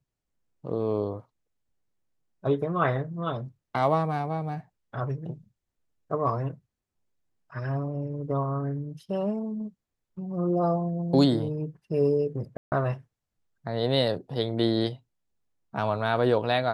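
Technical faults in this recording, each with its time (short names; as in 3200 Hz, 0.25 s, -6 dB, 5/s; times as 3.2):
12.57–12.72 gap 0.149 s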